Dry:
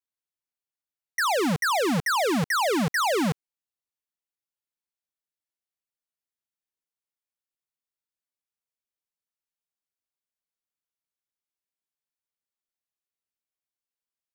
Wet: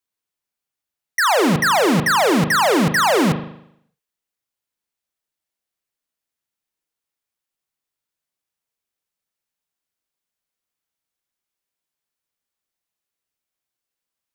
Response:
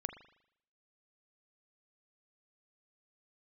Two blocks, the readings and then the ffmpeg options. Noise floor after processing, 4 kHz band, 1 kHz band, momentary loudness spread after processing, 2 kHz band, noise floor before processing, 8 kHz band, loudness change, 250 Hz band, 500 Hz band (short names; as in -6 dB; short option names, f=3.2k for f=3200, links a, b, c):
under -85 dBFS, +7.5 dB, +8.0 dB, 5 LU, +8.0 dB, under -85 dBFS, +7.5 dB, +8.0 dB, +8.0 dB, +8.0 dB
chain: -filter_complex "[1:a]atrim=start_sample=2205[a];[0:a][a]afir=irnorm=-1:irlink=0,volume=9dB"